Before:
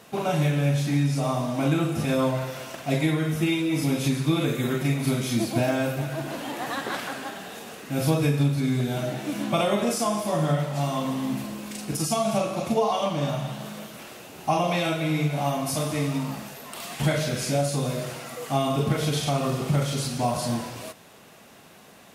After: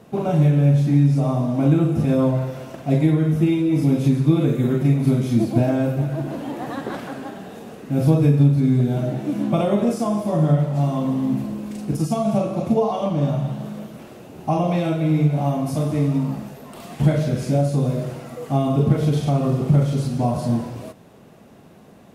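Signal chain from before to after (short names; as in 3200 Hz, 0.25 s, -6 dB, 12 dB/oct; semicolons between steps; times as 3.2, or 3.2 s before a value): tilt shelf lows +8.5 dB, about 820 Hz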